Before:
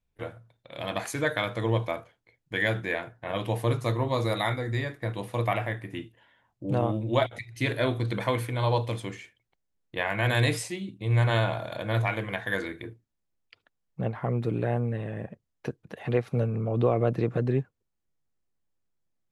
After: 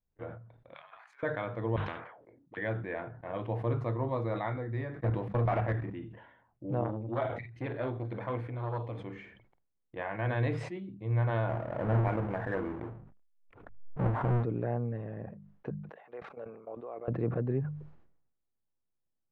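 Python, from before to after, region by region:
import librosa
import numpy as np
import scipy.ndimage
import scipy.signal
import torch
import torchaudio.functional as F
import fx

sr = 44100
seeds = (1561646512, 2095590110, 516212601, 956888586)

y = fx.chain(x, sr, fx.highpass(hz=1000.0, slope=24),
    fx.over_compress(threshold_db=-45.0, ratio=-0.5),
    fx.doubler(ms=14.0, db=-10.5), at=(0.74, 1.23))
y = fx.chain(y, sr, fx.auto_wah(base_hz=220.0, top_hz=1500.0, q=6.7, full_db=-32.5, direction='up'),
    fx.spectral_comp(ratio=10.0), at=(1.76, 2.57))
y = fx.chain(y, sr, fx.low_shelf(hz=390.0, db=3.0),
    fx.level_steps(step_db=14),
    fx.leveller(passes=3), at=(5.0, 5.93))
y = fx.chain(y, sr, fx.doubler(ms=48.0, db=-14.0),
    fx.transformer_sat(knee_hz=780.0), at=(6.84, 10.19))
y = fx.chain(y, sr, fx.halfwave_hold(),
    fx.peak_eq(hz=5000.0, db=-13.5, octaves=1.5),
    fx.pre_swell(db_per_s=57.0), at=(11.49, 14.43))
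y = fx.chain(y, sr, fx.highpass(hz=570.0, slope=12),
    fx.level_steps(step_db=18), at=(15.7, 17.08))
y = scipy.signal.sosfilt(scipy.signal.butter(2, 1400.0, 'lowpass', fs=sr, output='sos'), y)
y = fx.hum_notches(y, sr, base_hz=50, count=4)
y = fx.sustainer(y, sr, db_per_s=66.0)
y = y * 10.0 ** (-5.5 / 20.0)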